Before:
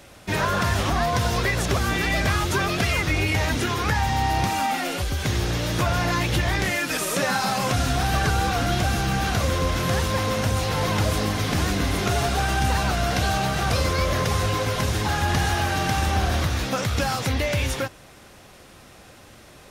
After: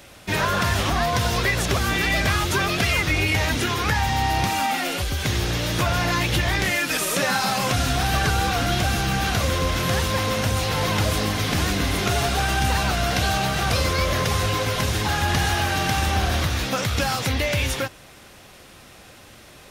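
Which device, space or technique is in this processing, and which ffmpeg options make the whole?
presence and air boost: -af "equalizer=f=3000:t=o:w=1.7:g=3.5,highshelf=f=12000:g=6.5"

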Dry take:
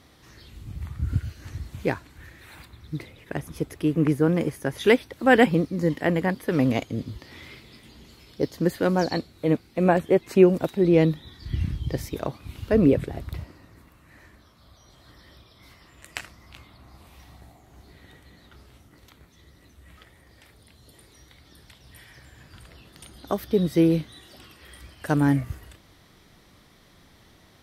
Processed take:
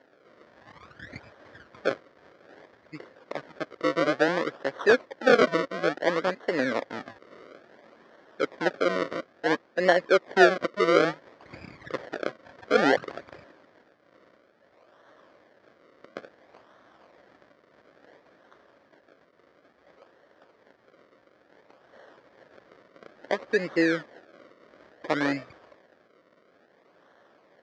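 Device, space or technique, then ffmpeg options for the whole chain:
circuit-bent sampling toy: -af "acrusher=samples=36:mix=1:aa=0.000001:lfo=1:lforange=36:lforate=0.58,highpass=410,equalizer=f=560:t=q:w=4:g=5,equalizer=f=840:t=q:w=4:g=-4,equalizer=f=1700:t=q:w=4:g=5,equalizer=f=2700:t=q:w=4:g=-8,equalizer=f=3900:t=q:w=4:g=-5,lowpass=f=4500:w=0.5412,lowpass=f=4500:w=1.3066"

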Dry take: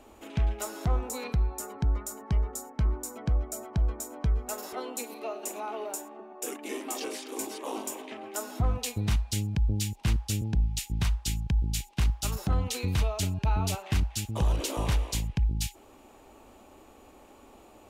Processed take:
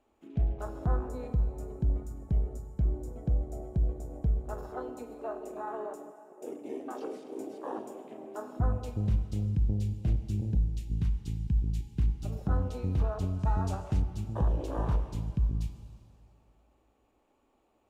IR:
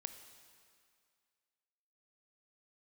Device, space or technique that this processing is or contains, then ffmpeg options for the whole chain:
swimming-pool hall: -filter_complex "[0:a]afwtdn=0.02[s0];[1:a]atrim=start_sample=2205[s1];[s0][s1]afir=irnorm=-1:irlink=0,highshelf=f=5700:g=-8,asettb=1/sr,asplit=3[s2][s3][s4];[s2]atrim=end=13.394[s5];[s3]atrim=start=13.39:end=14.02,asetpts=PTS-STARTPTS,afade=t=in:d=0.004:c=qsin,afade=t=out:st=0.626:d=0.004:c=qsin,equalizer=f=7300:t=o:w=1.5:g=8.5[s6];[s4]atrim=start=14.016[s7];[s5][s6]acrossfade=d=0.004:c1=hsin:c2=qsin[s8];[s8][s7]acrossfade=d=0.004:c1=qsin:c2=hsin,volume=1.33"

